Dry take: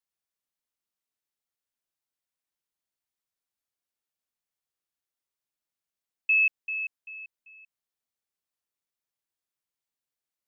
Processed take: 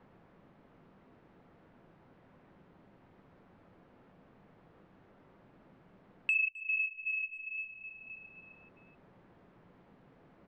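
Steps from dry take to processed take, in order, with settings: in parallel at +3 dB: compressor 10:1, threshold -33 dBFS, peak gain reduction 13 dB; on the sum: soft clip -16 dBFS, distortion -20 dB; tilt -4.5 dB/oct; on a send at -15 dB: reverb RT60 0.35 s, pre-delay 3 ms; on the sum: low-pass opened by the level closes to 2400 Hz, open at -38 dBFS; 6.34–7.58 LPC vocoder at 8 kHz pitch kept; high shelf 2500 Hz -11.5 dB; feedback echo 0.26 s, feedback 54%, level -17.5 dB; three-band squash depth 70%; gain +9 dB

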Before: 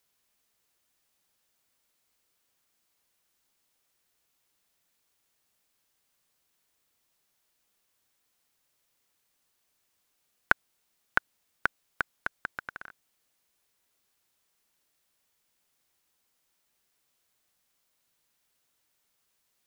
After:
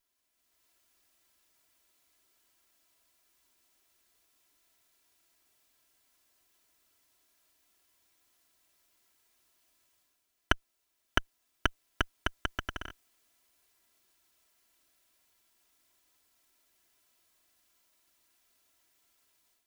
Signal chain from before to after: minimum comb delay 3 ms; AGC gain up to 10 dB; gain -4.5 dB

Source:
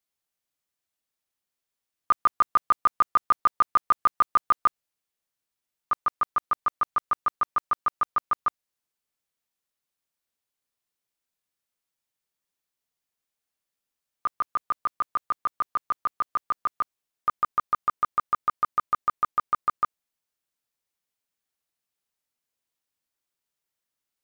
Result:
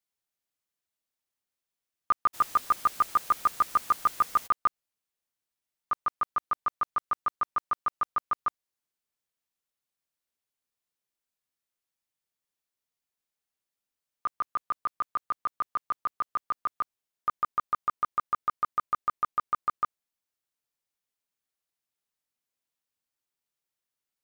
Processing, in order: 2.33–4.46 added noise white -42 dBFS; gain -3.5 dB

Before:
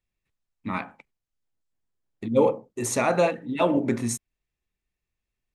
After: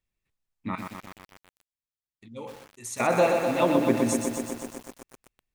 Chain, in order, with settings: 0.75–3 passive tone stack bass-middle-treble 5-5-5; lo-fi delay 0.124 s, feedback 80%, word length 7-bit, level -5 dB; gain -1 dB

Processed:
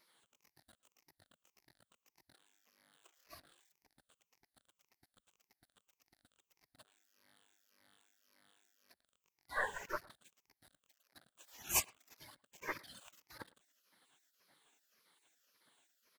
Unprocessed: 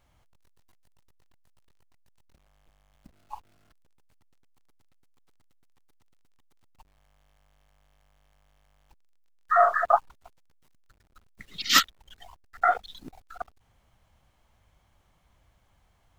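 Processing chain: moving spectral ripple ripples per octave 0.76, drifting -1.8 Hz, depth 15 dB; spectral gate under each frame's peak -25 dB weak; speakerphone echo 0.11 s, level -24 dB; gain +1.5 dB

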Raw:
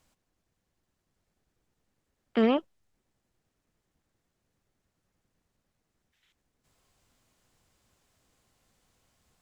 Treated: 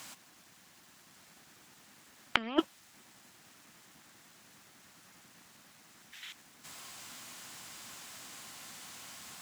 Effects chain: HPF 270 Hz 12 dB/oct; bell 460 Hz -13 dB 1.2 oct; negative-ratio compressor -42 dBFS, ratio -0.5; gain +14 dB

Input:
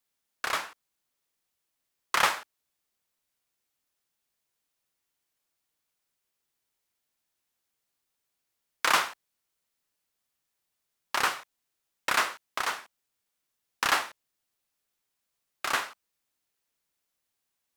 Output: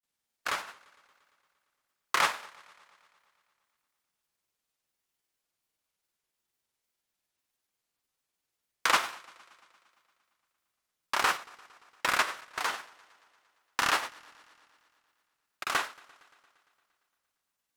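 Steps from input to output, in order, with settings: grains, spray 38 ms; warbling echo 0.115 s, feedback 72%, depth 84 cents, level -24 dB

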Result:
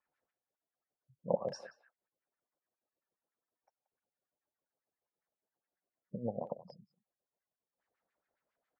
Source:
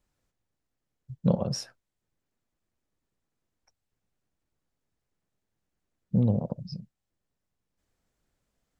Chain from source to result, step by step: spectral gate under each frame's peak -30 dB strong; LFO band-pass sine 7.3 Hz 540–2000 Hz; speakerphone echo 0.18 s, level -14 dB; gain +3 dB

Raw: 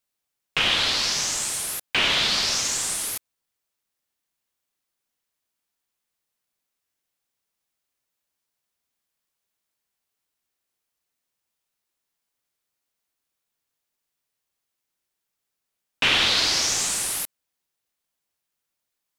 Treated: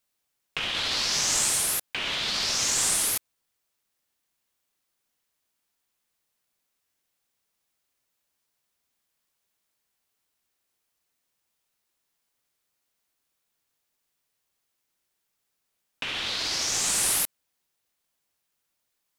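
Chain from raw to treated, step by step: negative-ratio compressor -27 dBFS, ratio -1

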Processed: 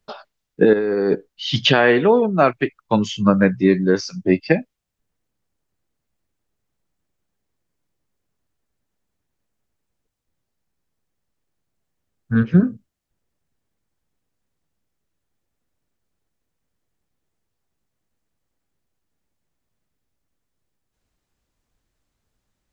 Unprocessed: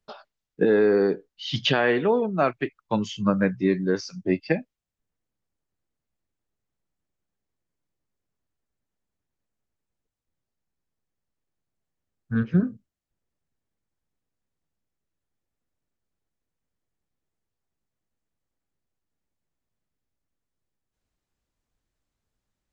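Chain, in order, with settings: 0.73–1.15 negative-ratio compressor -26 dBFS, ratio -1; gain +7 dB

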